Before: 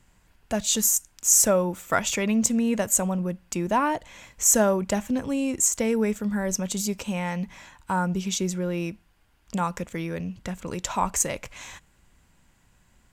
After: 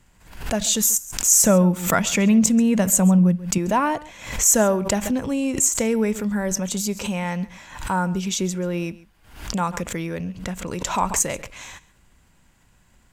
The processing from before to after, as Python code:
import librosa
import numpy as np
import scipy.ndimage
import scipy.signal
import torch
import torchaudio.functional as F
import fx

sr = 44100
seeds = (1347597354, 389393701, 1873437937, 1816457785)

y = fx.peak_eq(x, sr, hz=180.0, db=10.5, octaves=0.53, at=(1.43, 3.58))
y = y + 10.0 ** (-20.0 / 20.0) * np.pad(y, (int(136 * sr / 1000.0), 0))[:len(y)]
y = fx.pre_swell(y, sr, db_per_s=98.0)
y = y * librosa.db_to_amplitude(2.5)